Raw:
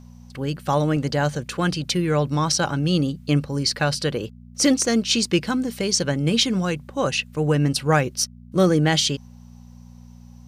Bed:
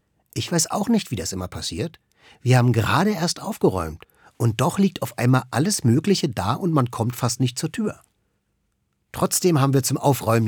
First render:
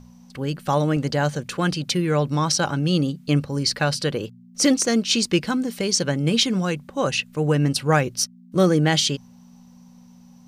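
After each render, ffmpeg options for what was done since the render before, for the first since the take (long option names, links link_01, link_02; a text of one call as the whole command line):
ffmpeg -i in.wav -af "bandreject=frequency=60:width_type=h:width=4,bandreject=frequency=120:width_type=h:width=4" out.wav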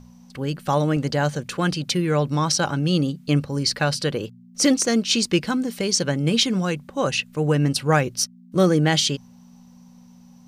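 ffmpeg -i in.wav -af anull out.wav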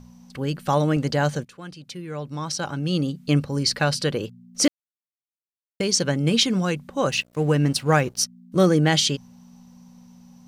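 ffmpeg -i in.wav -filter_complex "[0:a]asettb=1/sr,asplit=3[link_01][link_02][link_03];[link_01]atrim=end=7.094[link_04];[link_02]atrim=start=7.09:end=8.18,asetpts=PTS-STARTPTS,afade=type=in:duration=0.004:curve=qsin,afade=type=out:start_time=1.086:duration=0.004:curve=qsin,aeval=exprs='sgn(val(0))*max(abs(val(0))-0.00531,0)':channel_layout=same[link_05];[link_03]atrim=start=8.176[link_06];[link_04][link_05]acrossfade=duration=0.004:curve1=hsin:curve2=qsin[link_07];[link_07][link_06]acrossfade=duration=0.004:curve1=qsin:curve2=hsin,asplit=4[link_08][link_09][link_10][link_11];[link_08]atrim=end=1.45,asetpts=PTS-STARTPTS,afade=type=out:start_time=1.446:duration=0.004:curve=hsin:silence=0.141254[link_12];[link_09]atrim=start=1.45:end=4.68,asetpts=PTS-STARTPTS,afade=type=in:duration=1.85:curve=qua:silence=0.141254,afade=type=out:start_time=3.226:duration=0.004:curve=hsin[link_13];[link_10]atrim=start=4.68:end=5.8,asetpts=PTS-STARTPTS,volume=0[link_14];[link_11]atrim=start=5.8,asetpts=PTS-STARTPTS,afade=type=in:duration=0.004:curve=hsin[link_15];[link_12][link_13][link_14][link_15]concat=n=4:v=0:a=1" out.wav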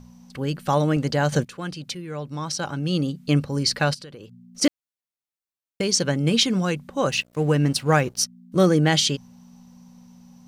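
ffmpeg -i in.wav -filter_complex "[0:a]asettb=1/sr,asplit=3[link_01][link_02][link_03];[link_01]atrim=end=1.324[link_04];[link_02]atrim=start=1.32:end=1.95,asetpts=PTS-STARTPTS,afade=type=in:duration=0.004:curve=qsin,afade=type=out:start_time=0.626:duration=0.004:curve=qsin,acontrast=78[link_05];[link_03]atrim=start=1.946[link_06];[link_04][link_05]acrossfade=duration=0.004:curve1=hsin:curve2=qsin[link_07];[link_07][link_06]acrossfade=duration=0.004:curve1=qsin:curve2=hsin,asplit=3[link_08][link_09][link_10];[link_08]afade=type=out:start_time=3.93:duration=0.02[link_11];[link_09]acompressor=threshold=-37dB:ratio=10:attack=3.2:release=140:knee=1:detection=peak,afade=type=in:start_time=3.93:duration=0.02,afade=type=out:start_time=4.61:duration=0.02[link_12];[link_10]afade=type=in:start_time=4.61:duration=0.02[link_13];[link_11][link_12][link_13]amix=inputs=3:normalize=0" out.wav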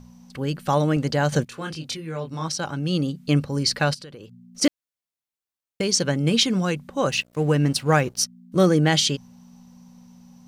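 ffmpeg -i in.wav -filter_complex "[0:a]asettb=1/sr,asplit=3[link_01][link_02][link_03];[link_01]atrim=end=1.474[link_04];[link_02]atrim=start=1.47:end=2.48,asetpts=PTS-STARTPTS,afade=type=in:duration=0.004:curve=qsin,afade=type=out:start_time=1.006:duration=0.004:curve=qsin,asplit=2[link_05][link_06];[link_06]adelay=25,volume=-3.5dB[link_07];[link_05][link_07]amix=inputs=2:normalize=0,atrim=end_sample=44541[link_08];[link_03]atrim=start=2.476[link_09];[link_04][link_08]acrossfade=duration=0.004:curve1=hsin:curve2=qsin[link_10];[link_10][link_09]acrossfade=duration=0.004:curve1=qsin:curve2=hsin" out.wav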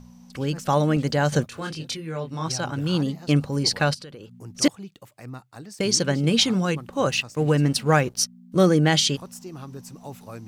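ffmpeg -i in.wav -i bed.wav -filter_complex "[1:a]volume=-20.5dB[link_01];[0:a][link_01]amix=inputs=2:normalize=0" out.wav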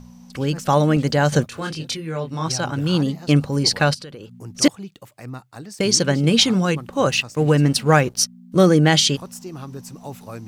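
ffmpeg -i in.wav -af "volume=4dB,alimiter=limit=-2dB:level=0:latency=1" out.wav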